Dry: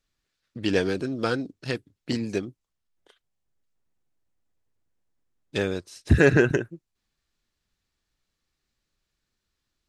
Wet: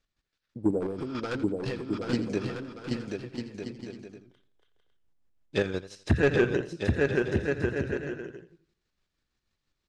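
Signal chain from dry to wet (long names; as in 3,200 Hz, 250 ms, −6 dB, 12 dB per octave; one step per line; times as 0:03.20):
0:00.57–0:01.18: healed spectral selection 880–7,400 Hz both
in parallel at +2 dB: brickwall limiter −13.5 dBFS, peak gain reduction 8.5 dB
on the sum: transient designer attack +5 dB, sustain +1 dB
square-wave tremolo 6.1 Hz, depth 60%, duty 30%
0:00.80–0:02.13: hard clipping −21.5 dBFS, distortion −15 dB
on a send: bouncing-ball delay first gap 780 ms, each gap 0.6×, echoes 5
on the sum: soft clipping −8 dBFS, distortion −13 dB
high-frequency loss of the air 63 metres
feedback echo with a swinging delay time 84 ms, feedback 35%, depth 94 cents, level −14 dB
level −6 dB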